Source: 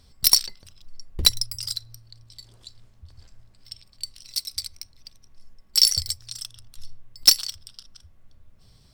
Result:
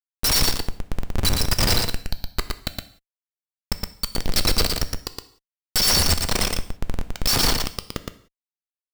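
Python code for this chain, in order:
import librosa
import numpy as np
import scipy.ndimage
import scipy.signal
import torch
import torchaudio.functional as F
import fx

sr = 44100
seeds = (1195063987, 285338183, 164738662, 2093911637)

y = fx.schmitt(x, sr, flips_db=-33.5)
y = y + 10.0 ** (-4.0 / 20.0) * np.pad(y, (int(116 * sr / 1000.0), 0))[:len(y)]
y = fx.rev_gated(y, sr, seeds[0], gate_ms=210, shape='falling', drr_db=10.5)
y = y * 10.0 ** (9.0 / 20.0)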